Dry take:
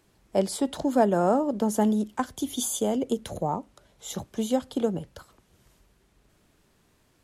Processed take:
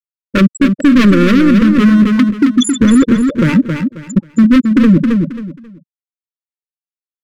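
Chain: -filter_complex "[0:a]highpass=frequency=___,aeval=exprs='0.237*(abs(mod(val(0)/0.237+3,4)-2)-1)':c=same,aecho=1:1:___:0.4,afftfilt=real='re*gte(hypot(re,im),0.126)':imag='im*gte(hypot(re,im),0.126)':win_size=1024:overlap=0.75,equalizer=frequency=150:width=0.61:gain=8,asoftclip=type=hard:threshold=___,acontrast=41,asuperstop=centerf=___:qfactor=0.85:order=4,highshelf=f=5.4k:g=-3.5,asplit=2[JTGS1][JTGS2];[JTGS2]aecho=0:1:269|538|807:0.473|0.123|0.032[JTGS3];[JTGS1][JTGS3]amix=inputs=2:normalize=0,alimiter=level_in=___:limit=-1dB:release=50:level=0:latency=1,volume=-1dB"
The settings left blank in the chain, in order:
69, 3.5, -25dB, 760, 17.5dB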